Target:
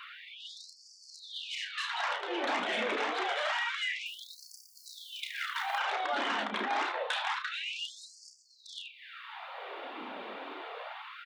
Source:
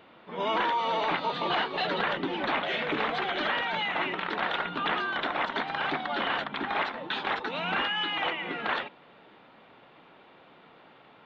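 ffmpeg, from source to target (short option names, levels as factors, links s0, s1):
-filter_complex "[0:a]aeval=exprs='0.15*sin(PI/2*2*val(0)/0.15)':c=same,acompressor=threshold=0.02:ratio=6,lowshelf=f=190:g=6.5,asettb=1/sr,asplit=3[s0][s1][s2];[s0]atrim=end=4.064[s3];[s1]atrim=start=4.06:end=5.78,asetpts=PTS-STARTPTS,afade=t=in:d=0.004:c=qsin,afade=t=out:st=1.716:d=0.004:c=qsin,acrusher=bits=6:mode=log:mix=0:aa=0.000001[s4];[s2]atrim=start=5.776[s5];[s3][s4]acrossfade=d=0.004:c1=hsin:c2=qsin[s6];[s6][s5]acrossfade=d=0.004:c1=qsin:c2=hsin,flanger=delay=0.7:depth=1.2:regen=-46:speed=1.9:shape=triangular,aecho=1:1:32|76:0.473|0.178,afftfilt=real='re*gte(b*sr/1024,200*pow(4500/200,0.5+0.5*sin(2*PI*0.27*pts/sr)))':imag='im*gte(b*sr/1024,200*pow(4500/200,0.5+0.5*sin(2*PI*0.27*pts/sr)))':win_size=1024:overlap=0.75,volume=1.88"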